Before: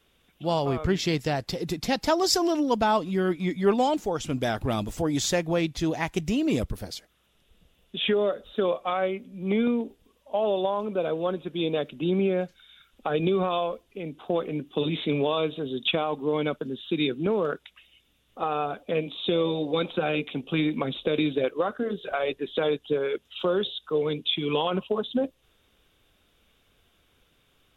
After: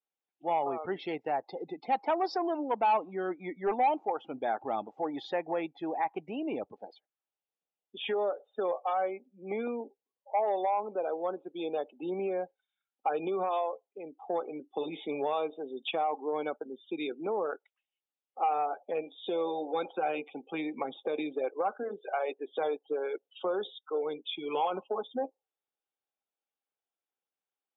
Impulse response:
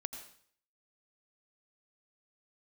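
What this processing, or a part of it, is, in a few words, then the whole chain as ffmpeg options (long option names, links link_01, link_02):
intercom: -af "highpass=310,lowpass=4500,lowpass=frequency=3000:poles=1,equalizer=frequency=810:width_type=o:width=0.27:gain=12,asoftclip=type=tanh:threshold=-16dB,bass=frequency=250:gain=-6,treble=frequency=4000:gain=-5,afftdn=noise_reduction=26:noise_floor=-39,volume=-4.5dB"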